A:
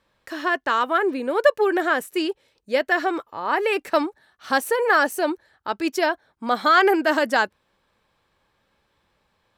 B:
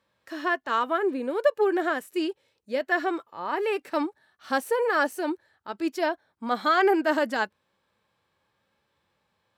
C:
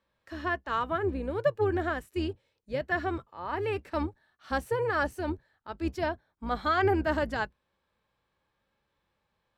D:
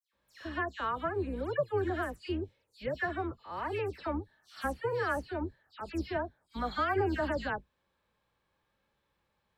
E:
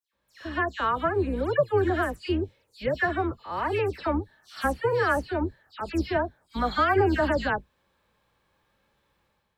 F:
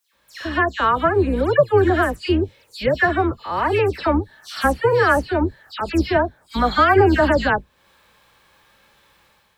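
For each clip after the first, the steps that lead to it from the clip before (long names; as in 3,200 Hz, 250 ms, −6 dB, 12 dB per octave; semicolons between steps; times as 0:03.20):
high-pass filter 79 Hz; harmonic and percussive parts rebalanced percussive −8 dB; level −2.5 dB
sub-octave generator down 2 octaves, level −1 dB; high-shelf EQ 7,400 Hz −8.5 dB; level −4.5 dB
in parallel at −0.5 dB: downward compressor, threshold −36 dBFS, peak gain reduction 14.5 dB; on the sum: all-pass dispersion lows, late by 135 ms, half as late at 3,000 Hz; level −6 dB
automatic gain control gain up to 8 dB
one half of a high-frequency compander encoder only; level +8 dB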